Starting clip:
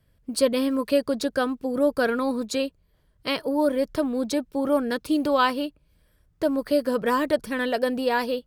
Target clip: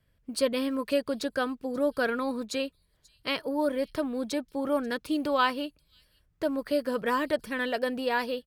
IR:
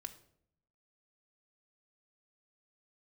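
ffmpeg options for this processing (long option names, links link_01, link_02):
-filter_complex "[0:a]acrossover=split=2900[link_01][link_02];[link_01]crystalizer=i=5:c=0[link_03];[link_02]aecho=1:1:536:0.106[link_04];[link_03][link_04]amix=inputs=2:normalize=0,volume=-6dB"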